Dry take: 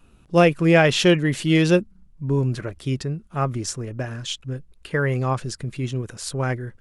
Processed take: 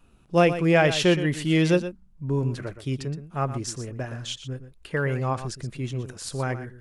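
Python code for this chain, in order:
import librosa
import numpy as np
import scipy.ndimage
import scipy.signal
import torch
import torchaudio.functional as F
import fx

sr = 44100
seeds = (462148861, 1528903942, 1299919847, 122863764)

y = fx.peak_eq(x, sr, hz=780.0, db=2.0, octaves=0.77)
y = y + 10.0 ** (-12.0 / 20.0) * np.pad(y, (int(119 * sr / 1000.0), 0))[:len(y)]
y = y * librosa.db_to_amplitude(-4.0)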